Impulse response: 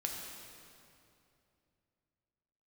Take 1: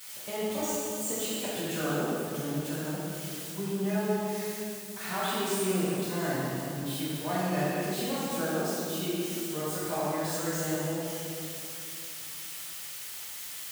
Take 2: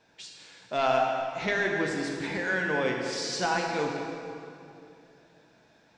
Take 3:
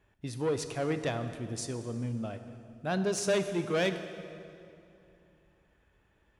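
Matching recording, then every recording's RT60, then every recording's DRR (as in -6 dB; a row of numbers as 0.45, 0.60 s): 2; 2.7, 2.7, 2.7 s; -10.0, -0.5, 8.5 dB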